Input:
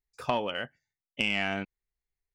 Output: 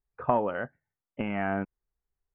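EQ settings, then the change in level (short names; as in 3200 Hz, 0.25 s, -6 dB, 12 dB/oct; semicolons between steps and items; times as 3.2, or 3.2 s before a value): LPF 1500 Hz 24 dB/oct; +4.0 dB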